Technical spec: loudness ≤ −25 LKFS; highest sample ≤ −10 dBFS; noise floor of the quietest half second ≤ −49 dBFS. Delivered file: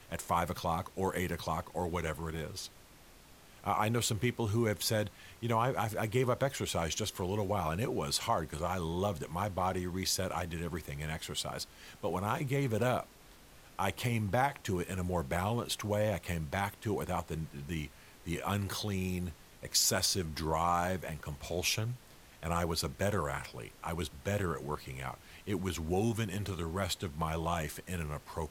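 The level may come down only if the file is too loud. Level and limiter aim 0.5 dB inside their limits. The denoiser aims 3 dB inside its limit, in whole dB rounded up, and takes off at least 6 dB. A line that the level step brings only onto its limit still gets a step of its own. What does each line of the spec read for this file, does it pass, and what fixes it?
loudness −34.5 LKFS: in spec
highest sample −15.0 dBFS: in spec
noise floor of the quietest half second −57 dBFS: in spec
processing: no processing needed

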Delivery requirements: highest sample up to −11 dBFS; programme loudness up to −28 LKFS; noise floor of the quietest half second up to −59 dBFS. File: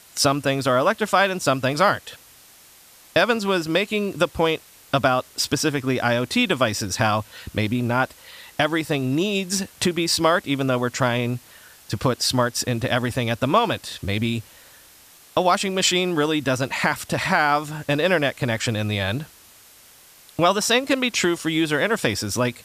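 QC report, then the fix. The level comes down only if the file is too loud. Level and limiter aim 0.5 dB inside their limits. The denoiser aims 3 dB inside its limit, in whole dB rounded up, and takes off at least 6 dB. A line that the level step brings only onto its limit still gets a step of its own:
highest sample −5.5 dBFS: out of spec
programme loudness −21.5 LKFS: out of spec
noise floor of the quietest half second −50 dBFS: out of spec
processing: broadband denoise 6 dB, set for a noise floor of −50 dBFS
level −7 dB

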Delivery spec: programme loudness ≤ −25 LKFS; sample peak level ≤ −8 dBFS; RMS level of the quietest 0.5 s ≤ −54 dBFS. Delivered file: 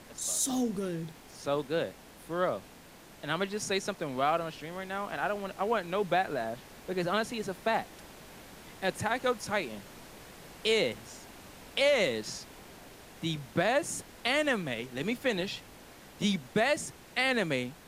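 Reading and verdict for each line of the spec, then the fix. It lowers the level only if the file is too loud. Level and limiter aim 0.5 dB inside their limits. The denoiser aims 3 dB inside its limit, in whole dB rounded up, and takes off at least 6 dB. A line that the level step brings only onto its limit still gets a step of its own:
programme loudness −31.5 LKFS: in spec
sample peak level −14.5 dBFS: in spec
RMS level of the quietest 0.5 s −53 dBFS: out of spec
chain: broadband denoise 6 dB, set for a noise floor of −53 dBFS

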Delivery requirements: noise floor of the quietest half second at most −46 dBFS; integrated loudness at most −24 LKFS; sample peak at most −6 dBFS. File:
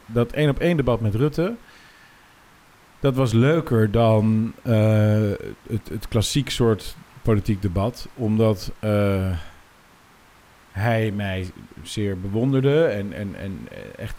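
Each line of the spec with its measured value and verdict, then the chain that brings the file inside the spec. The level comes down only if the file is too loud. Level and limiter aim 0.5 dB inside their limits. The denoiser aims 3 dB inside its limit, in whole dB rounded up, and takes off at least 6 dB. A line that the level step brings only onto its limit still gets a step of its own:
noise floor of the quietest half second −52 dBFS: in spec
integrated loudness −22.0 LKFS: out of spec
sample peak −7.0 dBFS: in spec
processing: level −2.5 dB

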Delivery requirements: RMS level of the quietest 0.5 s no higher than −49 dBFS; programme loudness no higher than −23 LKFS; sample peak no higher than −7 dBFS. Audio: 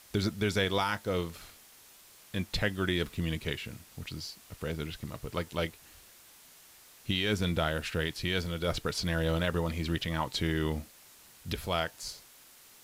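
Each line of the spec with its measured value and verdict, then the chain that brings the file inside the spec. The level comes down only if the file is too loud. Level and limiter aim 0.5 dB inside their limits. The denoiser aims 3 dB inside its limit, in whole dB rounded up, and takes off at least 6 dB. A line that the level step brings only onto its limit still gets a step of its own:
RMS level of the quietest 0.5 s −56 dBFS: in spec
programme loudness −32.5 LKFS: in spec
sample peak −17.0 dBFS: in spec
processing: no processing needed

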